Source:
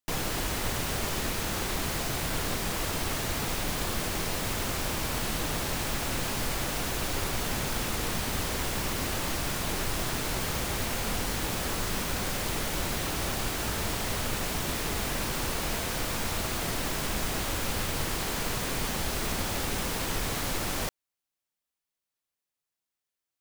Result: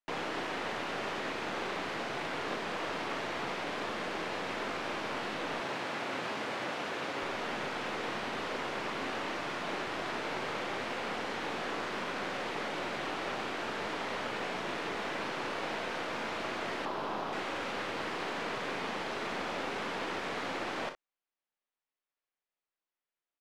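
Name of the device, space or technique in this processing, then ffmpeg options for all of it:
crystal radio: -filter_complex "[0:a]aecho=1:1:38|60:0.335|0.282,asettb=1/sr,asplit=3[s0][s1][s2];[s0]atrim=end=16.854[s3];[s1]atrim=start=16.85:end=17.33,asetpts=PTS-STARTPTS,afade=t=in:d=0.004:c=qsin,afade=t=out:st=0.476:d=0.004:c=qsin,equalizer=f=1000:t=o:w=1:g=6,equalizer=f=2000:t=o:w=1:g=-9,equalizer=f=8000:t=o:w=1:g=-9[s4];[s2]atrim=start=17.326[s5];[s3][s4]acrossfade=d=0.004:c1=hsin:c2=qsin[s6];[s6][s5]acrossfade=d=0.004:c1=qsin:c2=hsin,highpass=300,lowpass=2700,aeval=exprs='if(lt(val(0),0),0.708*val(0),val(0))':c=same,asettb=1/sr,asplit=3[s7][s8][s9];[s7]atrim=end=5.604[s10];[s8]atrim=start=5.6:end=7.23,asetpts=PTS-STARTPTS,afade=t=in:d=0.004:c=qsin,afade=t=out:st=1.626:d=0.004:c=qsin,highpass=80[s11];[s9]atrim=start=7.226[s12];[s10][s11]acrossfade=d=0.004:c1=hsin:c2=qsin[s13];[s13][s12]acrossfade=d=0.004:c1=qsin:c2=hsin"

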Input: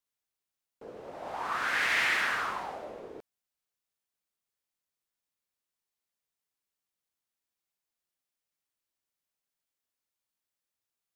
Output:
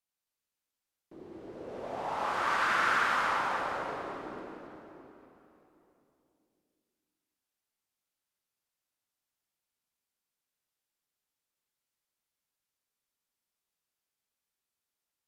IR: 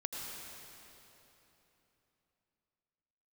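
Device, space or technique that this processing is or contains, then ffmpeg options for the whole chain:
slowed and reverbed: -filter_complex "[0:a]asetrate=32193,aresample=44100[s0];[1:a]atrim=start_sample=2205[s1];[s0][s1]afir=irnorm=-1:irlink=0,volume=0.841"

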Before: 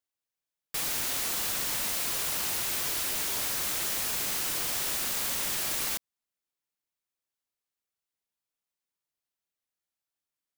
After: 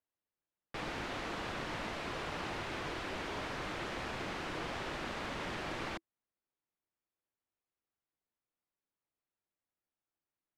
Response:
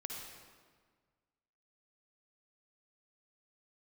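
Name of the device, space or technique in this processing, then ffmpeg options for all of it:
phone in a pocket: -af "lowpass=3200,equalizer=f=330:t=o:w=0.2:g=4,highshelf=f=2300:g=-12,volume=1.26"

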